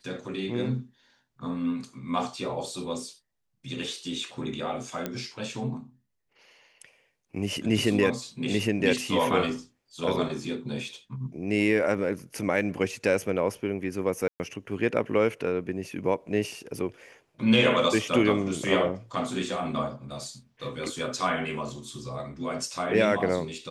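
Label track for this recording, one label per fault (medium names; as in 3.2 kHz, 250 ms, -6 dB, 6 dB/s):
5.060000	5.060000	pop -15 dBFS
14.280000	14.400000	dropout 119 ms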